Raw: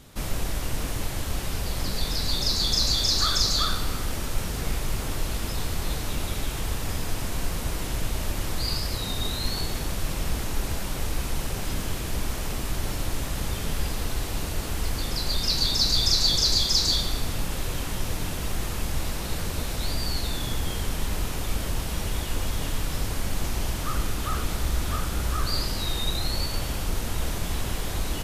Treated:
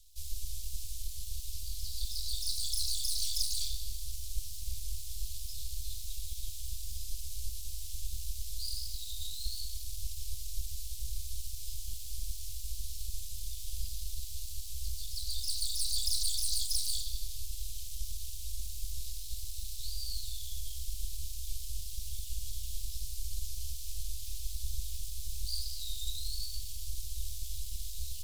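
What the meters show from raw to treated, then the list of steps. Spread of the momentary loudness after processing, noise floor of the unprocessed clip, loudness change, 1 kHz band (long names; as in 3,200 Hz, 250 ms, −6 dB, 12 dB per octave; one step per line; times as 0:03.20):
10 LU, −31 dBFS, −11.0 dB, below −40 dB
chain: full-wave rectification
inverse Chebyshev band-stop filter 250–1,100 Hz, stop band 70 dB
level −6 dB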